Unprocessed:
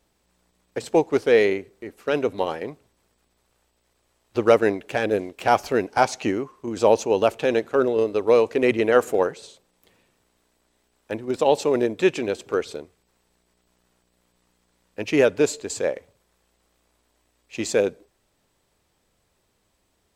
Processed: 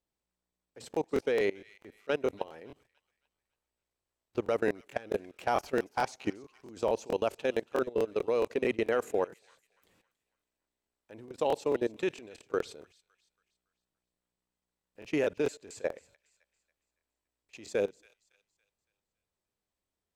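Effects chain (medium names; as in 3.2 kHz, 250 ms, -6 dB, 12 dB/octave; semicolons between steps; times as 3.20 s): level held to a coarse grid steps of 21 dB; feedback echo behind a high-pass 280 ms, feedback 40%, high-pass 2 kHz, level -18 dB; crackling interface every 0.22 s, samples 1024, repeat, from 0.70 s; trim -6 dB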